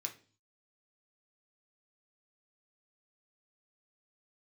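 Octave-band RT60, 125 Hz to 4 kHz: 0.70, 0.55, 0.45, 0.35, 0.35, 0.45 seconds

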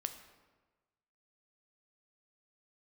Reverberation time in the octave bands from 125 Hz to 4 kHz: 1.4, 1.3, 1.3, 1.3, 1.1, 0.85 seconds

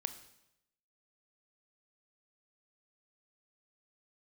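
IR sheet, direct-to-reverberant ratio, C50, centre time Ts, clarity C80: 10.0 dB, 12.5 dB, 8 ms, 14.5 dB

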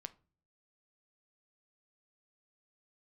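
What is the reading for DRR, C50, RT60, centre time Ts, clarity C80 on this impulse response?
11.5 dB, 19.5 dB, non-exponential decay, 2 ms, 26.0 dB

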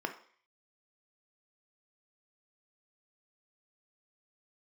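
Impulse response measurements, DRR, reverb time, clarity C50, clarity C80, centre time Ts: 5.0 dB, 0.50 s, 11.5 dB, 16.0 dB, 10 ms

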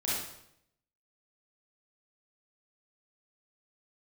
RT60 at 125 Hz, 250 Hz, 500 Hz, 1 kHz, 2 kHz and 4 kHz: 0.90, 0.80, 0.80, 0.70, 0.70, 0.65 seconds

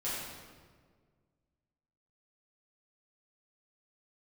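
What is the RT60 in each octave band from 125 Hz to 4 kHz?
2.3, 2.1, 1.9, 1.5, 1.3, 1.1 seconds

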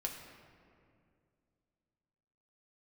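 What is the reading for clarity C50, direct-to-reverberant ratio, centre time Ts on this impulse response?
5.5 dB, 0.5 dB, 50 ms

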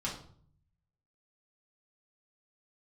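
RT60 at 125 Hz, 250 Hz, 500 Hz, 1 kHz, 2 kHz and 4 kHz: 1.1, 0.80, 0.60, 0.50, 0.40, 0.40 seconds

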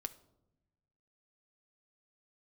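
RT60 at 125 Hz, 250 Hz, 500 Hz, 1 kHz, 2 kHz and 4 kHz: 1.6, 1.4, 1.0, 0.80, 0.50, 0.50 seconds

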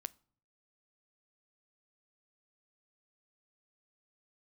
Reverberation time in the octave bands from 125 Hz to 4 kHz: 0.80, 0.65, 0.60, 0.55, 0.40, 0.35 seconds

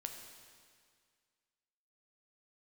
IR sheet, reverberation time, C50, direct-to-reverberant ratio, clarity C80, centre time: 2.0 s, 5.5 dB, 4.0 dB, 6.5 dB, 44 ms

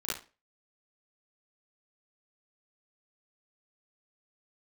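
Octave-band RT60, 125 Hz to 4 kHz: 0.30, 0.35, 0.35, 0.30, 0.30, 0.30 seconds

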